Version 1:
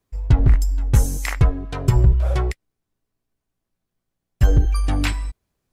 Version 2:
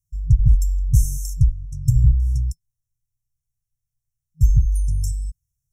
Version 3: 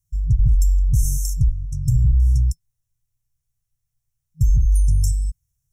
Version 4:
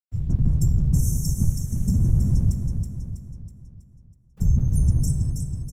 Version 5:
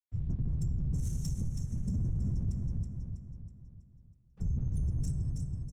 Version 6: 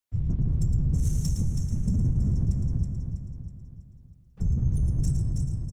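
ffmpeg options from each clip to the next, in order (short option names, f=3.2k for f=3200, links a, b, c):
-af "afftfilt=real='re*(1-between(b*sr/4096,160,5300))':imag='im*(1-between(b*sr/4096,160,5300))':win_size=4096:overlap=0.75"
-af "alimiter=level_in=13dB:limit=-1dB:release=50:level=0:latency=1,volume=-8.5dB"
-af "aeval=exprs='val(0)*gte(abs(val(0)),0.00562)':c=same,afftfilt=real='hypot(re,im)*cos(2*PI*random(0))':imag='hypot(re,im)*sin(2*PI*random(1))':win_size=512:overlap=0.75,aecho=1:1:324|648|972|1296|1620|1944:0.531|0.26|0.127|0.0625|0.0306|0.015,volume=2dB"
-af "asoftclip=type=tanh:threshold=-10.5dB,adynamicsmooth=sensitivity=7:basefreq=4.9k,alimiter=limit=-18dB:level=0:latency=1:release=67,volume=-7.5dB"
-af "aecho=1:1:112:0.422,volume=7dB"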